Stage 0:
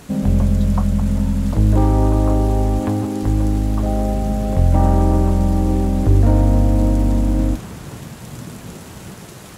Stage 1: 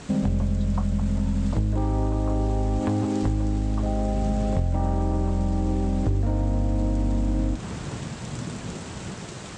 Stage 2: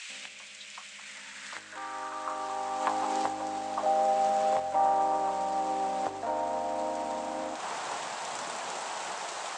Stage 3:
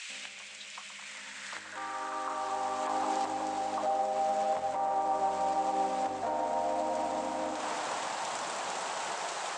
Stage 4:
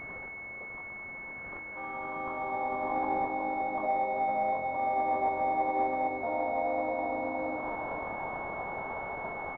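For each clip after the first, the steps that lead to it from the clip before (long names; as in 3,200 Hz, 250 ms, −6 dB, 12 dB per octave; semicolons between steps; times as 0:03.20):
elliptic low-pass filter 8,300 Hz, stop band 50 dB; downward compressor, threshold −21 dBFS, peak gain reduction 12 dB; level +1 dB
high-pass filter sweep 2,400 Hz → 790 Hz, 0:00.82–0:03.28; level +2 dB
brickwall limiter −23.5 dBFS, peak gain reduction 11 dB; tape delay 125 ms, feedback 85%, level −8 dB, low-pass 2,400 Hz
double-tracking delay 23 ms −5 dB; switching amplifier with a slow clock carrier 2,200 Hz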